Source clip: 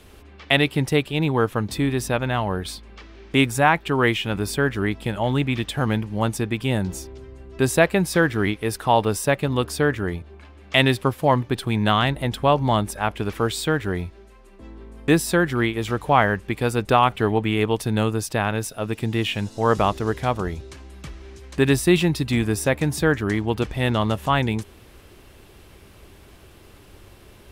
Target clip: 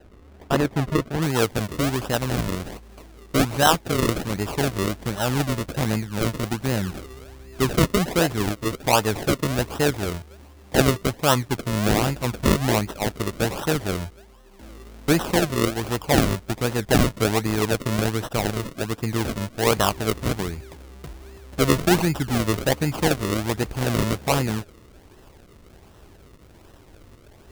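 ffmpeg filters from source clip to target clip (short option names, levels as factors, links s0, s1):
-af "acrusher=samples=38:mix=1:aa=0.000001:lfo=1:lforange=38:lforate=1.3,asetnsamples=n=441:p=0,asendcmd='1.22 highshelf g 3',highshelf=f=3400:g=-7.5,volume=0.841"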